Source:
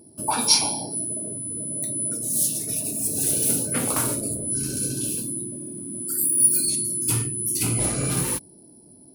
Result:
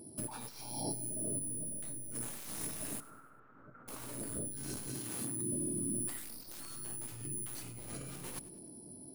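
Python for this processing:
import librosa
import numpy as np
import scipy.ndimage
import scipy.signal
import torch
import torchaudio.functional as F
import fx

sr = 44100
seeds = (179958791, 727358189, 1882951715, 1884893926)

p1 = fx.tracing_dist(x, sr, depth_ms=0.13)
p2 = fx.highpass(p1, sr, hz=61.0, slope=12, at=(4.88, 5.53))
p3 = fx.over_compress(p2, sr, threshold_db=-34.0, ratio=-1.0)
p4 = fx.ladder_lowpass(p3, sr, hz=1400.0, resonance_pct=85, at=(3.0, 3.88))
p5 = p4 + fx.echo_feedback(p4, sr, ms=99, feedback_pct=46, wet_db=-19.0, dry=0)
p6 = fx.detune_double(p5, sr, cents=47, at=(1.39, 2.15))
y = p6 * 10.0 ** (-8.5 / 20.0)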